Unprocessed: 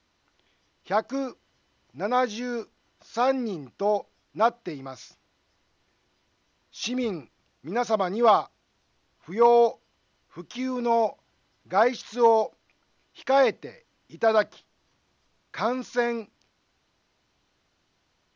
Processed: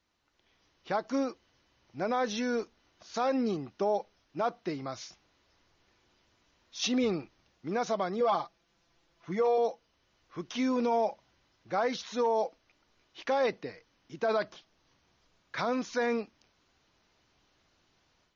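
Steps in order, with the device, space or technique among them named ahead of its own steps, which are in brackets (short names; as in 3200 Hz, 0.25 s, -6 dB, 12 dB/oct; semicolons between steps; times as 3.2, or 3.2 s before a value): 8.2–9.58 comb 5.9 ms, depth 84%; low-bitrate web radio (AGC gain up to 8.5 dB; limiter -12 dBFS, peak gain reduction 10.5 dB; gain -7.5 dB; MP3 32 kbps 32000 Hz)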